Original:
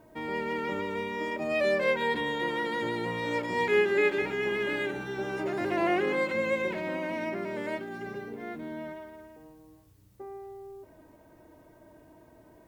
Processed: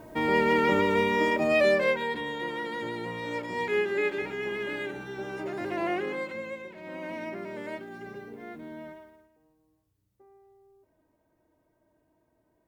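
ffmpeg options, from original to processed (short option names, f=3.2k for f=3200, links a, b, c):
-af "volume=19.5dB,afade=t=out:st=1.14:d=0.93:silence=0.251189,afade=t=out:st=5.91:d=0.82:silence=0.281838,afade=t=in:st=6.73:d=0.35:silence=0.298538,afade=t=out:st=8.88:d=0.42:silence=0.251189"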